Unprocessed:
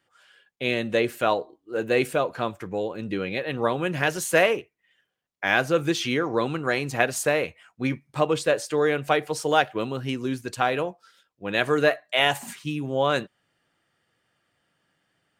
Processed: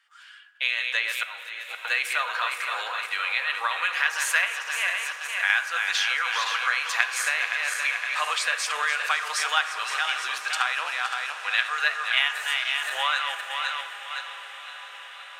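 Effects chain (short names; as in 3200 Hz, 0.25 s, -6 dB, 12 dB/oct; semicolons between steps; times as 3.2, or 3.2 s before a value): regenerating reverse delay 0.258 s, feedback 64%, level -8 dB; HPF 1200 Hz 24 dB/oct; high shelf 8300 Hz -11 dB; in parallel at +1.5 dB: level quantiser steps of 24 dB; 0.65–1.85 on the sum: auto swell 0.733 s; compressor 4:1, threshold -29 dBFS, peak gain reduction 14.5 dB; diffused feedback echo 0.614 s, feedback 78%, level -15.5 dB; on a send at -10 dB: reverb RT60 2.4 s, pre-delay 3 ms; on the sum: gain +7.5 dB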